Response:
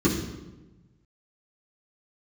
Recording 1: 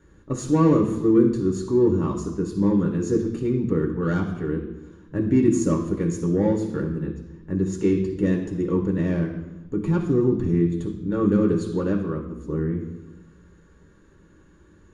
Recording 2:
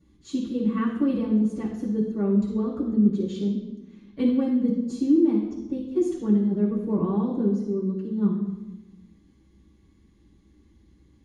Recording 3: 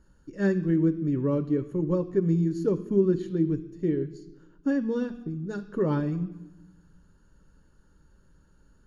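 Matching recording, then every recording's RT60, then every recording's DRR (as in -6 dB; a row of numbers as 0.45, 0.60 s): 2; 1.1, 1.1, 1.1 s; -0.5, -7.5, 9.5 dB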